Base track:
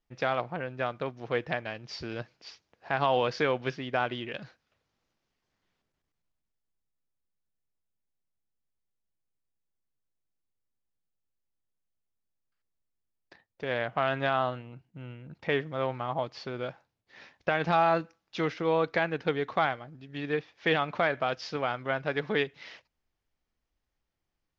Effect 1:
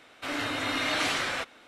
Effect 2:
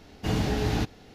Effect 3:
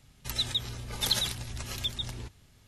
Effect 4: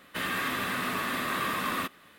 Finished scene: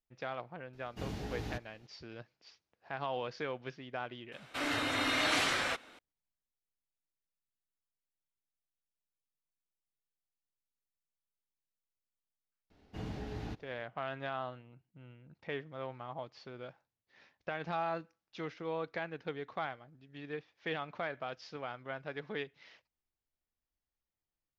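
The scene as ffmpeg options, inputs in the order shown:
-filter_complex "[2:a]asplit=2[a][b];[0:a]volume=-11.5dB[c];[b]highshelf=f=5.1k:g=-11[d];[a]atrim=end=1.14,asetpts=PTS-STARTPTS,volume=-14.5dB,afade=t=in:d=0.004:c=hsin,afade=t=out:st=1.136:d=0.004:c=hsin,adelay=730[e];[1:a]atrim=end=1.67,asetpts=PTS-STARTPTS,volume=-2.5dB,afade=t=in:d=0.004:c=hsin,afade=t=out:st=1.666:d=0.004:c=hsin,adelay=4320[f];[d]atrim=end=1.14,asetpts=PTS-STARTPTS,volume=-15dB,afade=t=in:d=0.004:c=hsin,afade=t=out:st=1.136:d=0.004:c=hsin,adelay=12700[g];[c][e][f][g]amix=inputs=4:normalize=0"

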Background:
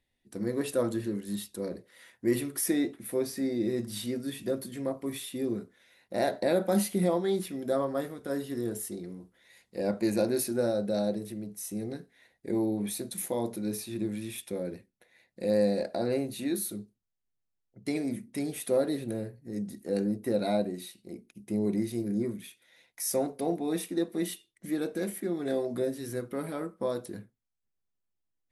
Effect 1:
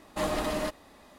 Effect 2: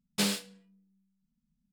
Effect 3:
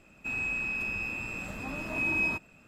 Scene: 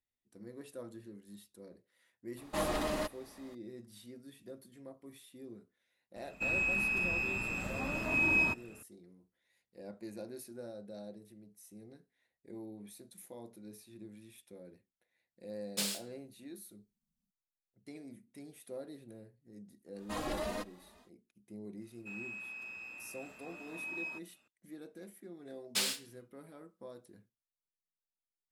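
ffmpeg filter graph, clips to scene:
-filter_complex "[1:a]asplit=2[a][b];[3:a]asplit=2[c][d];[2:a]asplit=2[e][f];[0:a]volume=-18dB[g];[e]highshelf=f=3.4k:g=10.5[h];[b]asplit=2[i][j];[j]adelay=3,afreqshift=2.2[k];[i][k]amix=inputs=2:normalize=1[l];[d]highpass=f=530:p=1[m];[f]highpass=f=1.5k:p=1[n];[a]atrim=end=1.18,asetpts=PTS-STARTPTS,volume=-4dB,afade=t=in:d=0.004:c=hsin,afade=t=out:st=1.176:d=0.004:c=hsin,adelay=2370[o];[c]atrim=end=2.67,asetpts=PTS-STARTPTS,afade=t=in:d=0.004:c=hsin,afade=t=out:st=2.666:d=0.004:c=hsin,adelay=6160[p];[h]atrim=end=1.72,asetpts=PTS-STARTPTS,volume=-11.5dB,afade=t=in:d=0.004:c=hsin,afade=t=out:st=1.716:d=0.004:c=hsin,adelay=15590[q];[l]atrim=end=1.18,asetpts=PTS-STARTPTS,volume=-4.5dB,afade=t=in:d=0.1,afade=t=out:st=1.08:d=0.1,adelay=19930[r];[m]atrim=end=2.67,asetpts=PTS-STARTPTS,volume=-12.5dB,afade=t=in:d=0.004:c=hsin,afade=t=out:st=2.666:d=0.004:c=hsin,adelay=21810[s];[n]atrim=end=1.72,asetpts=PTS-STARTPTS,volume=-1dB,afade=t=in:d=0.004:c=hsin,afade=t=out:st=1.716:d=0.004:c=hsin,adelay=25570[t];[g][o][p][q][r][s][t]amix=inputs=7:normalize=0"

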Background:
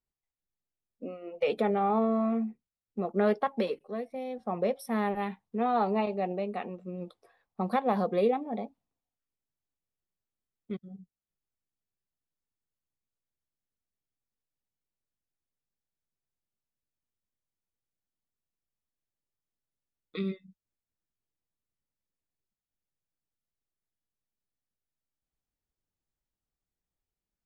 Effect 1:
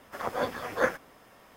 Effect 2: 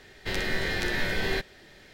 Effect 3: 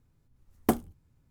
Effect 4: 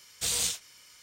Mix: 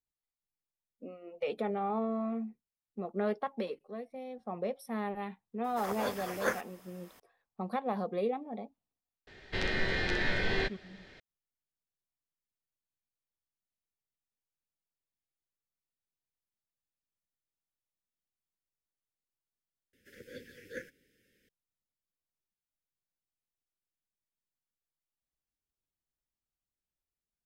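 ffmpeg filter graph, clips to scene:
-filter_complex "[1:a]asplit=2[a][b];[0:a]volume=-6.5dB[c];[a]highshelf=f=4.2k:g=11.5[d];[2:a]lowpass=4.7k[e];[b]asuperstop=centerf=900:order=12:qfactor=0.85[f];[c]asplit=2[g][h];[g]atrim=end=19.934[i];[f]atrim=end=1.56,asetpts=PTS-STARTPTS,volume=-13.5dB[j];[h]atrim=start=21.486[k];[d]atrim=end=1.56,asetpts=PTS-STARTPTS,volume=-6.5dB,afade=t=in:d=0.004:c=hsin,afade=t=out:st=1.556:d=0.004:c=hsin,adelay=5640[l];[e]atrim=end=1.93,asetpts=PTS-STARTPTS,volume=-2.5dB,afade=t=in:d=0.004:c=hsin,afade=t=out:st=1.926:d=0.004:c=hsin,adelay=9270[m];[i][j]acrossfade=d=0.004:c1=hsin:c2=hsin[n];[n][k]acrossfade=d=0.004:c1=hsin:c2=hsin[o];[o][l][m]amix=inputs=3:normalize=0"

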